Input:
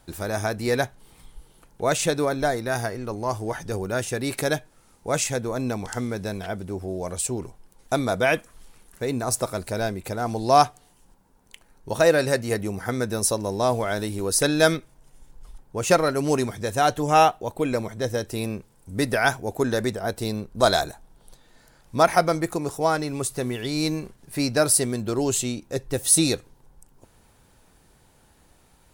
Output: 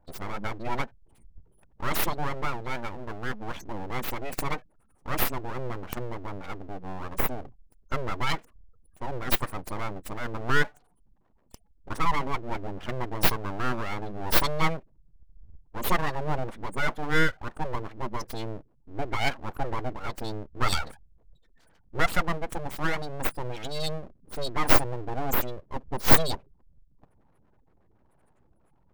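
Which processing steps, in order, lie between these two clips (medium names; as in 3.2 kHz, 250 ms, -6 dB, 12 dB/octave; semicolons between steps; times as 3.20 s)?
spectral gate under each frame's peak -15 dB strong; tone controls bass -1 dB, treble +8 dB; full-wave rectifier; trim -2.5 dB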